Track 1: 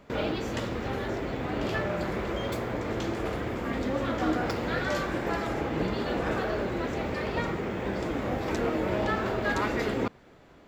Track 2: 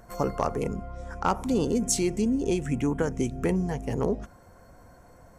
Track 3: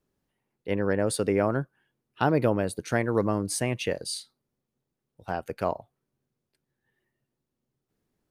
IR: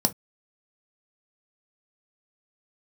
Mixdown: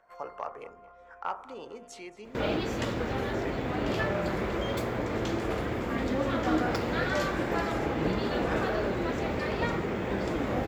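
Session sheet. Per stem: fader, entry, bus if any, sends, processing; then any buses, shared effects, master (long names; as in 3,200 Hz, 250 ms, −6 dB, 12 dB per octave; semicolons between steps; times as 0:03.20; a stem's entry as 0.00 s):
+0.5 dB, 2.25 s, no send, no echo send, no processing
−6.0 dB, 0.00 s, no send, echo send −19 dB, three-way crossover with the lows and the highs turned down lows −23 dB, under 520 Hz, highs −22 dB, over 3,400 Hz; hum removal 48.86 Hz, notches 38
muted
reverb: not used
echo: repeating echo 224 ms, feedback 46%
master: no processing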